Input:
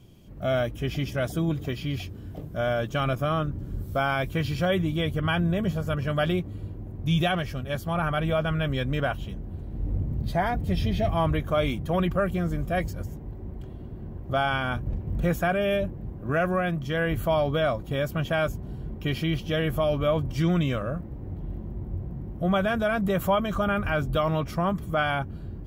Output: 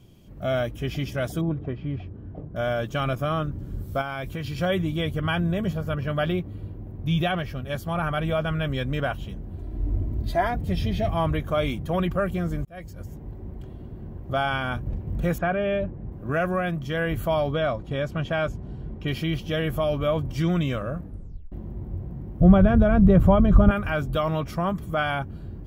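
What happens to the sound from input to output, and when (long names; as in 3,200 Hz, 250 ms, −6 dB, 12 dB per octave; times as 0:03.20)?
0:01.41–0:02.56: low-pass filter 1,300 Hz
0:04.01–0:04.61: downward compressor, threshold −27 dBFS
0:05.73–0:07.64: parametric band 7,800 Hz −8 dB 1.2 octaves
0:09.58–0:10.47: comb filter 3 ms
0:12.65–0:13.24: fade in linear
0:15.38–0:16.12: low-pass filter 2,500 Hz
0:17.52–0:19.08: high-frequency loss of the air 67 metres
0:21.00: tape stop 0.52 s
0:22.40–0:23.71: spectral tilt −4.5 dB per octave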